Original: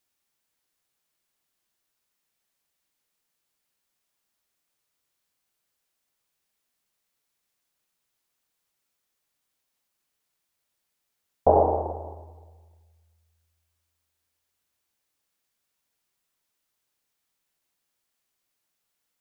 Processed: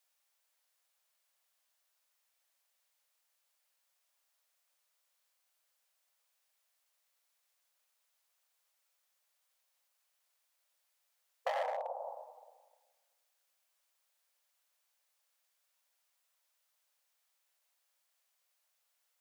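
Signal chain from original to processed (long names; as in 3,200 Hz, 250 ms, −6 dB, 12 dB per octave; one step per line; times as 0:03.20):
hard clipping −20.5 dBFS, distortion −6 dB
downward compressor 4 to 1, threshold −34 dBFS, peak gain reduction 10 dB
linear-phase brick-wall high-pass 480 Hz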